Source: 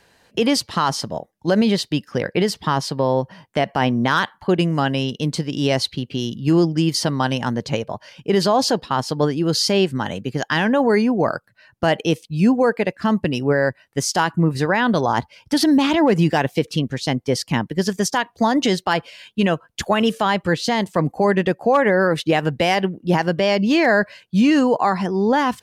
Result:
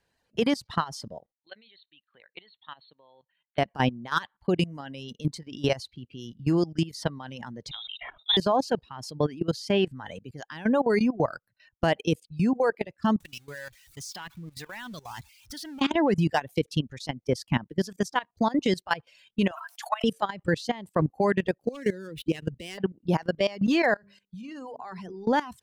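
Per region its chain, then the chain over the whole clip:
1.32–3.58 de-esser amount 55% + brick-wall FIR low-pass 4400 Hz + differentiator
7.71–8.37 inverted band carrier 3800 Hz + sustainer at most 48 dB/s
13.2–15.81 zero-crossing step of -23 dBFS + passive tone stack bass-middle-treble 5-5-5
19.51–20.04 steep high-pass 660 Hz 96 dB/oct + sustainer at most 46 dB/s
21.6–22.78 median filter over 9 samples + EQ curve 430 Hz 0 dB, 780 Hz -21 dB, 3000 Hz +2 dB
23.94–25.27 notches 50/100/150/200/250/300/350/400/450/500 Hz + compressor 8:1, threshold -23 dBFS
whole clip: low shelf 93 Hz +8.5 dB; reverb removal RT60 1.3 s; level quantiser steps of 18 dB; gain -3.5 dB

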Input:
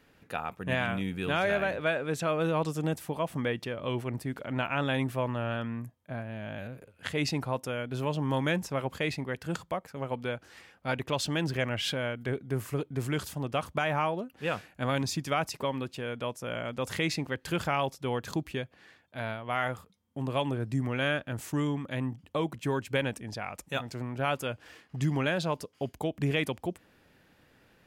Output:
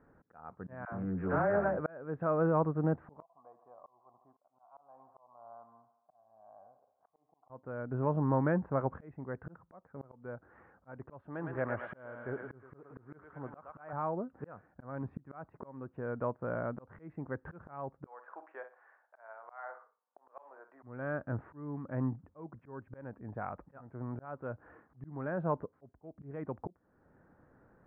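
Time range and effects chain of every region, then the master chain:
0.85–1.77 air absorption 240 m + dispersion lows, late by 71 ms, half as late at 470 Hz + Doppler distortion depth 0.25 ms
3.22–7.5 vocal tract filter a + low shelf 220 Hz -11.5 dB + thinning echo 73 ms, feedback 66%, high-pass 200 Hz, level -13.5 dB
11.21–13.93 low shelf 290 Hz -9 dB + thinning echo 0.111 s, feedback 72%, high-pass 790 Hz, level -3.5 dB
18.06–20.83 HPF 620 Hz 24 dB/oct + doubler 45 ms -13 dB + feedback echo 61 ms, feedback 27%, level -13.5 dB
whole clip: steep low-pass 1500 Hz 36 dB/oct; auto swell 0.528 s

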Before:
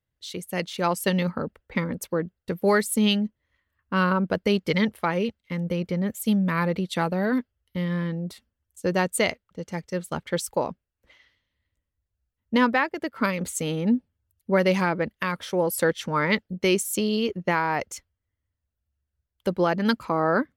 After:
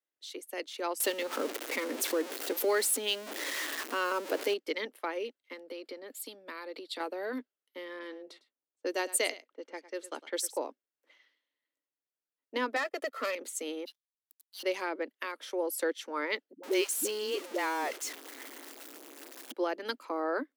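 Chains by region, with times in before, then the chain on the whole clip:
1–4.54 zero-crossing step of -28.5 dBFS + fast leveller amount 50%
5.53–7 bell 4400 Hz +9.5 dB 0.66 oct + notch 6100 Hz, Q 5.9 + compressor 4:1, threshold -27 dBFS
7.99–10.59 low-pass opened by the level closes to 670 Hz, open at -24 dBFS + high shelf 3500 Hz +7.5 dB + echo 0.104 s -17 dB
12.76–13.35 comb 1.6 ms, depth 94% + compressor 2:1, threshold -26 dBFS + sample leveller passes 2
13.85–14.63 steep high-pass 3000 Hz 96 dB/oct + sample leveller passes 5
16.53–19.52 zero-crossing step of -26.5 dBFS + dispersion highs, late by 0.105 s, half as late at 310 Hz
whole clip: steep high-pass 270 Hz 72 dB/oct; dynamic EQ 1100 Hz, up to -4 dB, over -36 dBFS, Q 0.71; gain -7 dB

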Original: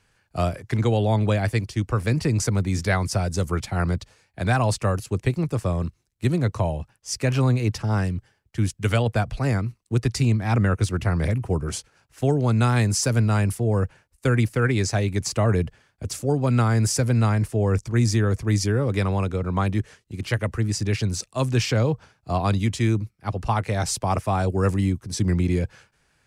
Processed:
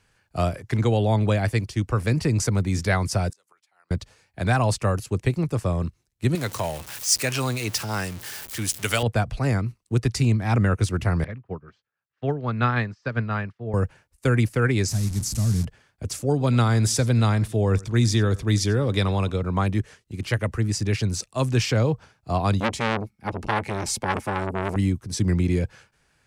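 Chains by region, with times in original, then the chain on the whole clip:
3.3–3.91 HPF 930 Hz + flipped gate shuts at -31 dBFS, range -30 dB
6.35–9.03 zero-crossing step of -34.5 dBFS + tilt +3 dB/oct
11.24–13.74 speaker cabinet 110–4100 Hz, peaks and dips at 320 Hz -4 dB, 1200 Hz +6 dB, 1700 Hz +7 dB + upward expander 2.5:1, over -37 dBFS
14.88–15.65 delta modulation 64 kbps, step -22 dBFS + EQ curve 200 Hz 0 dB, 450 Hz -19 dB, 3000 Hz -16 dB, 5400 Hz -1 dB
16.31–19.42 bell 3600 Hz +11.5 dB 0.33 oct + echo 91 ms -21.5 dB
22.6–24.76 small resonant body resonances 220/840/2200 Hz, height 12 dB, ringing for 65 ms + core saturation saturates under 1800 Hz
whole clip: dry

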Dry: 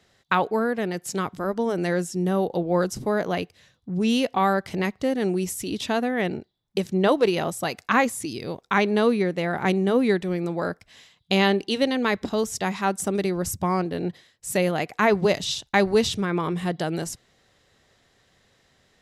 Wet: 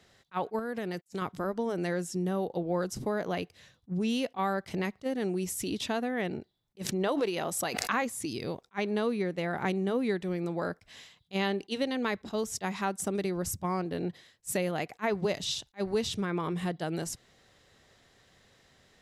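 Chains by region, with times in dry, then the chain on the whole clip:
0.59–1.22 compressor 4:1, threshold -26 dBFS + gate -40 dBFS, range -50 dB + high shelf 4800 Hz +5.5 dB
6.82–8.02 low shelf 160 Hz -10 dB + backwards sustainer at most 55 dB/s
whole clip: compressor 2:1, threshold -33 dBFS; attack slew limiter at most 560 dB/s

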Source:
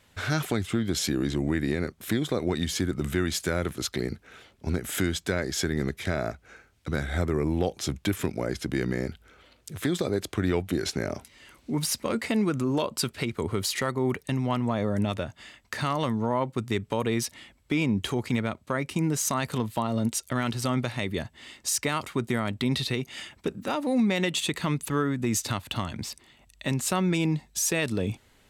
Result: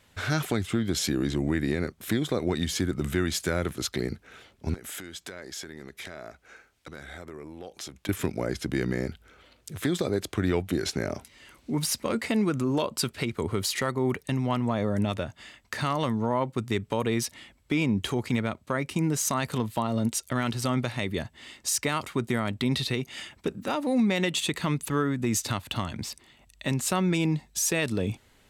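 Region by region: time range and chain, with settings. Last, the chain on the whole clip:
4.74–8.09 compressor 4:1, threshold -35 dBFS + bell 89 Hz -10.5 dB 2.8 oct
whole clip: dry

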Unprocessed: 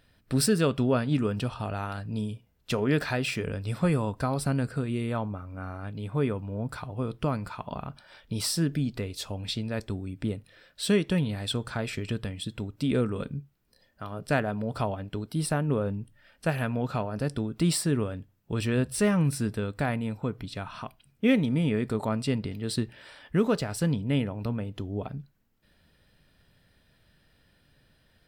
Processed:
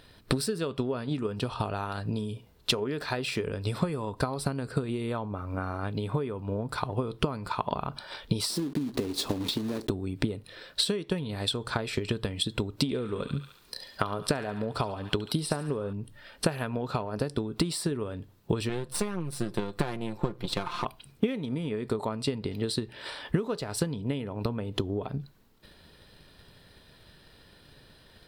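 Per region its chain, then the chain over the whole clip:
8.5–9.91 block floating point 3-bit + bell 280 Hz +15 dB 1.1 oct + compressor 2.5:1, threshold -29 dBFS
12.82–15.93 high shelf 11000 Hz -5.5 dB + thin delay 70 ms, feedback 43%, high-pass 1600 Hz, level -6 dB + mismatched tape noise reduction encoder only
18.69–20.85 half-wave gain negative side -12 dB + comb 5.7 ms, depth 58%
whole clip: fifteen-band EQ 400 Hz +7 dB, 1000 Hz +6 dB, 4000 Hz +7 dB, 10000 Hz +3 dB; compressor 10:1, threshold -35 dBFS; transient shaper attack +7 dB, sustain +3 dB; gain +5.5 dB

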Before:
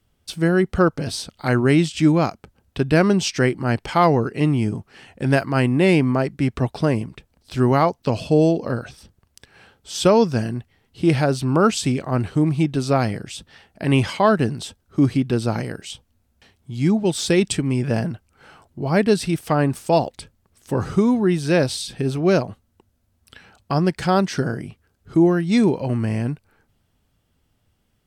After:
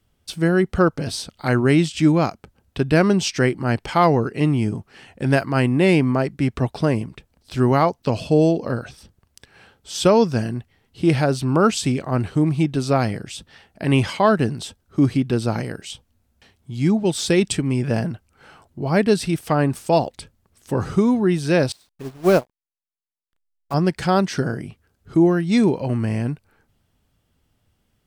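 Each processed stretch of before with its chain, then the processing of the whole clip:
21.72–23.74 level-crossing sampler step -26.5 dBFS + dynamic EQ 780 Hz, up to +6 dB, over -33 dBFS, Q 0.75 + upward expander 2.5:1, over -34 dBFS
whole clip: dry

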